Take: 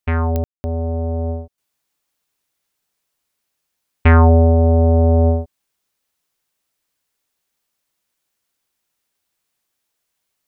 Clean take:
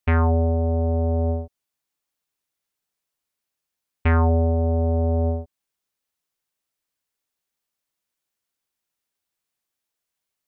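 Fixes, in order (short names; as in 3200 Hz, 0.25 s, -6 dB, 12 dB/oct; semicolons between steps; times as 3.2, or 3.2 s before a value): de-click; room tone fill 0.44–0.64; gain 0 dB, from 1.58 s -8 dB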